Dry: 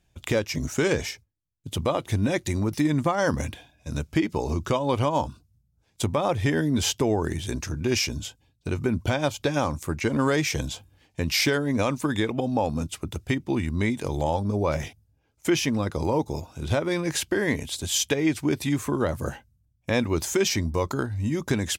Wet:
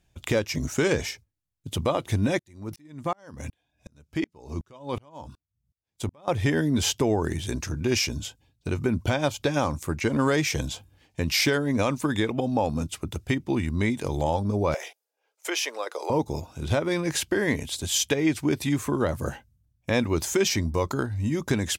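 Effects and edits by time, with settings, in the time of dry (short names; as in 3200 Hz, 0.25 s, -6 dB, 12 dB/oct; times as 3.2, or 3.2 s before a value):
2.39–6.28 dB-ramp tremolo swelling 2.7 Hz, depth 38 dB
14.74–16.1 steep high-pass 430 Hz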